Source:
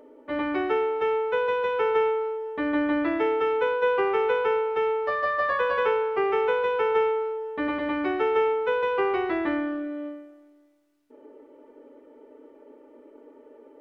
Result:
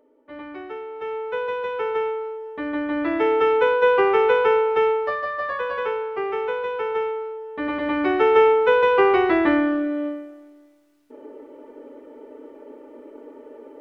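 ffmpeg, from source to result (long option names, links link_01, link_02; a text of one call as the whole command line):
ffmpeg -i in.wav -af "volume=16dB,afade=type=in:start_time=0.85:duration=0.52:silence=0.398107,afade=type=in:start_time=2.88:duration=0.54:silence=0.421697,afade=type=out:start_time=4.83:duration=0.43:silence=0.398107,afade=type=in:start_time=7.47:duration=0.95:silence=0.316228" out.wav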